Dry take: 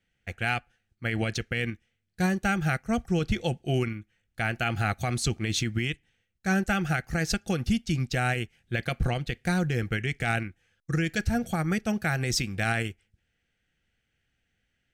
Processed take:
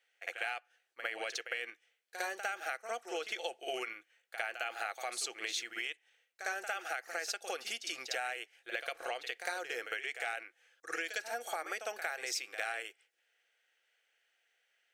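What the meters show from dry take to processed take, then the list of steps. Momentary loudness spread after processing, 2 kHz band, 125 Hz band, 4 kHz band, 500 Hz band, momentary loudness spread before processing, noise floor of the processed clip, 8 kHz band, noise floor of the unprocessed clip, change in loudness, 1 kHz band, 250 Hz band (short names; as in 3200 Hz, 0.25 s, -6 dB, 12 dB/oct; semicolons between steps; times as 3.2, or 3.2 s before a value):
6 LU, -7.0 dB, under -40 dB, -5.5 dB, -9.0 dB, 6 LU, -78 dBFS, -5.5 dB, -78 dBFS, -10.0 dB, -7.5 dB, -27.0 dB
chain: inverse Chebyshev high-pass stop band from 190 Hz, stop band 50 dB; compressor, threshold -37 dBFS, peak gain reduction 13.5 dB; reverse echo 55 ms -9 dB; gain +2 dB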